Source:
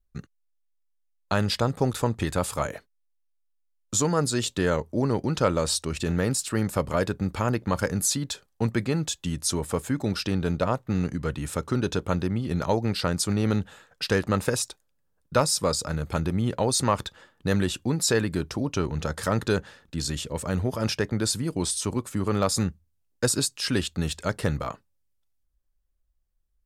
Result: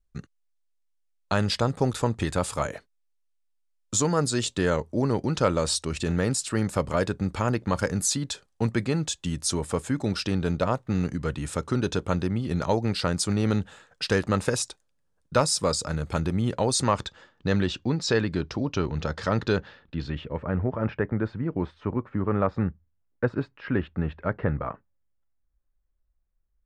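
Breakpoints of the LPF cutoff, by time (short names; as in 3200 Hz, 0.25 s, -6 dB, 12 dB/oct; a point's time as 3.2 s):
LPF 24 dB/oct
16.69 s 9900 Hz
17.6 s 5400 Hz
19.53 s 5400 Hz
20.47 s 2000 Hz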